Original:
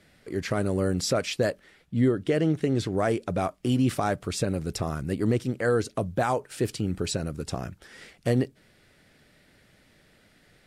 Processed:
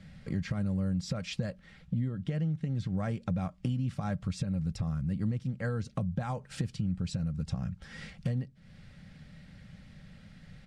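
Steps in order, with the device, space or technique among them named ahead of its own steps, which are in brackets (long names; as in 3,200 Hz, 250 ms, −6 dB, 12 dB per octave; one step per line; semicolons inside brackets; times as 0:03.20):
jukebox (low-pass filter 6,500 Hz 12 dB per octave; low shelf with overshoot 230 Hz +11 dB, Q 3; downward compressor 5 to 1, threshold −29 dBFS, peak gain reduction 19 dB)
comb filter 3.7 ms, depth 35%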